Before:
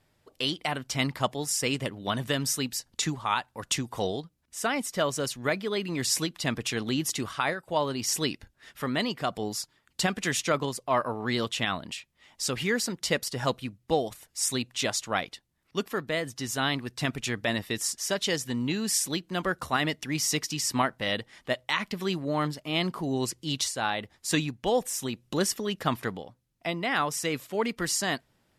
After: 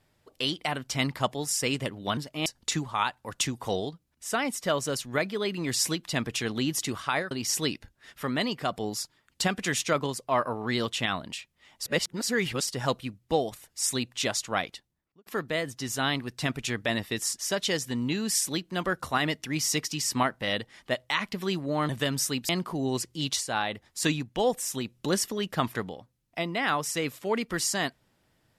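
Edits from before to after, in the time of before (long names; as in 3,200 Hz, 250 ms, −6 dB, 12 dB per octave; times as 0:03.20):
0:02.17–0:02.77: swap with 0:22.48–0:22.77
0:07.62–0:07.90: remove
0:12.42–0:13.26: reverse
0:15.33–0:15.85: fade out and dull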